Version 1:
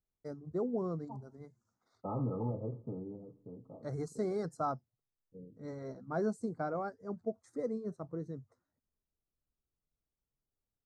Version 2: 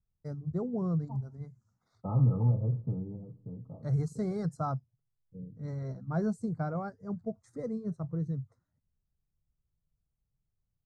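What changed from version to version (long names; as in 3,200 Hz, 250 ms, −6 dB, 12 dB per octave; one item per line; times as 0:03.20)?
master: add low shelf with overshoot 210 Hz +10.5 dB, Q 1.5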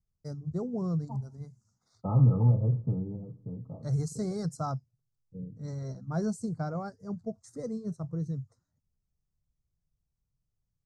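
first voice: add high shelf with overshoot 3,800 Hz +9.5 dB, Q 1.5
second voice +3.5 dB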